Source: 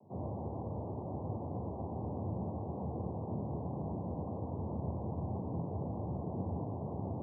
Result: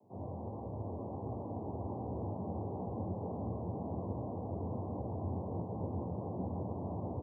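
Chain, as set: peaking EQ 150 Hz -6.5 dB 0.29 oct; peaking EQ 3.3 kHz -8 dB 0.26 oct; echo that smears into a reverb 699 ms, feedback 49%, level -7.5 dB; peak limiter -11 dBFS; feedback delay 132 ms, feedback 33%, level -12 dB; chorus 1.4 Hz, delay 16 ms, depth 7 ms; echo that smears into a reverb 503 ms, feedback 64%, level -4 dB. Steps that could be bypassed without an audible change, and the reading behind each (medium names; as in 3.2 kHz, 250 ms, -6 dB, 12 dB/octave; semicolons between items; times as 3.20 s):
peaking EQ 3.3 kHz: input has nothing above 1.1 kHz; peak limiter -11 dBFS: peak at its input -25.5 dBFS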